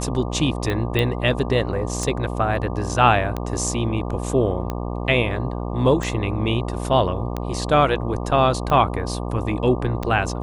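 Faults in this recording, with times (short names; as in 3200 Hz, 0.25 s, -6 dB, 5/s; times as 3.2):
buzz 60 Hz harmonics 20 -27 dBFS
tick 45 rpm -13 dBFS
0.99 pop -9 dBFS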